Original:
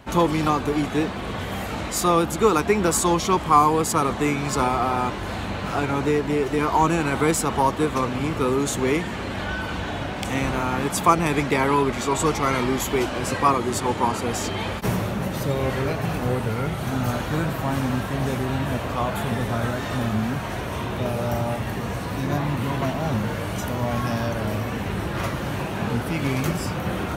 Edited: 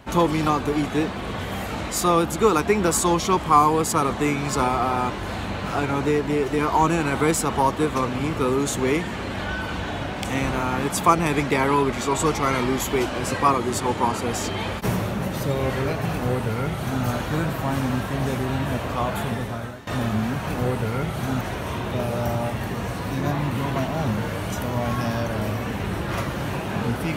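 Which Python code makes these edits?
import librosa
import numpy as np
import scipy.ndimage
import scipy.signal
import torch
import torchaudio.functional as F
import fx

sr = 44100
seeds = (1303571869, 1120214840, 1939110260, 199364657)

y = fx.edit(x, sr, fx.duplicate(start_s=16.11, length_s=0.94, to_s=20.47),
    fx.fade_out_to(start_s=19.2, length_s=0.67, floor_db=-18.0), tone=tone)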